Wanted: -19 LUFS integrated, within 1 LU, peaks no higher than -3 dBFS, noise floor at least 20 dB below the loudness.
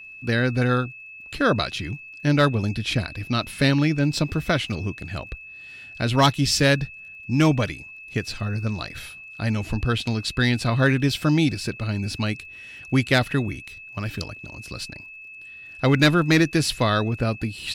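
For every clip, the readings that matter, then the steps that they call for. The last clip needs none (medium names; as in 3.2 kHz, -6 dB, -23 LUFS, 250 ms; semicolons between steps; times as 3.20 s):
tick rate 31 per s; steady tone 2.6 kHz; tone level -39 dBFS; loudness -23.0 LUFS; peak level -8.5 dBFS; loudness target -19.0 LUFS
-> de-click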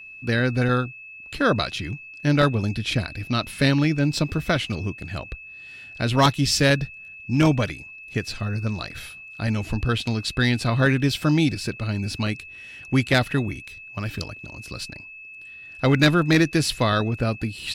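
tick rate 0 per s; steady tone 2.6 kHz; tone level -39 dBFS
-> band-stop 2.6 kHz, Q 30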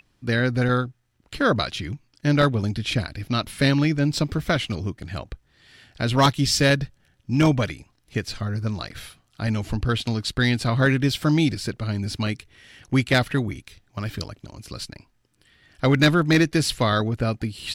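steady tone not found; loudness -23.0 LUFS; peak level -6.0 dBFS; loudness target -19.0 LUFS
-> trim +4 dB; peak limiter -3 dBFS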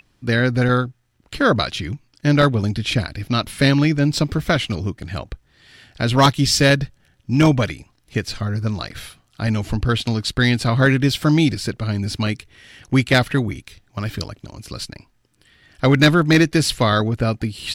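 loudness -19.0 LUFS; peak level -3.0 dBFS; noise floor -62 dBFS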